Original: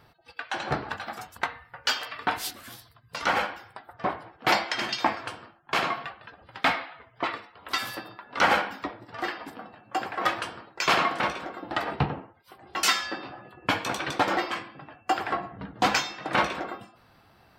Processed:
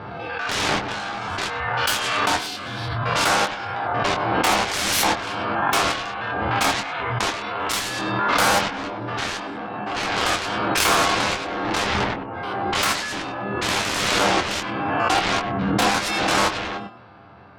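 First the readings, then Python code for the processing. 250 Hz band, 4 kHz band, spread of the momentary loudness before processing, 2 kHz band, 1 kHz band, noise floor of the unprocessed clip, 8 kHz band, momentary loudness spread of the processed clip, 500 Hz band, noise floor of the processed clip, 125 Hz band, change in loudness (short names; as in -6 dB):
+8.5 dB, +8.0 dB, 17 LU, +6.0 dB, +6.5 dB, -59 dBFS, +11.5 dB, 9 LU, +7.5 dB, -34 dBFS, +9.0 dB, +6.5 dB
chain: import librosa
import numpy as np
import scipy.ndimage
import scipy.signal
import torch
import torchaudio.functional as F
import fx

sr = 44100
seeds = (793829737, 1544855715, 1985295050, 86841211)

p1 = fx.spec_steps(x, sr, hold_ms=100)
p2 = scipy.signal.sosfilt(scipy.signal.butter(2, 92.0, 'highpass', fs=sr, output='sos'), p1)
p3 = fx.env_lowpass_down(p2, sr, base_hz=1800.0, full_db=-24.0)
p4 = fx.high_shelf(p3, sr, hz=3000.0, db=2.5)
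p5 = fx.notch(p4, sr, hz=1900.0, q=8.7)
p6 = fx.env_lowpass(p5, sr, base_hz=1700.0, full_db=-27.0)
p7 = 10.0 ** (-21.0 / 20.0) * np.tanh(p6 / 10.0 ** (-21.0 / 20.0))
p8 = fx.cheby_harmonics(p7, sr, harmonics=(7,), levels_db=(-7,), full_scale_db=-21.0)
p9 = p8 + fx.room_early_taps(p8, sr, ms=(10, 25), db=(-6.0, -7.0), dry=0)
p10 = fx.pre_swell(p9, sr, db_per_s=22.0)
y = F.gain(torch.from_numpy(p10), 6.0).numpy()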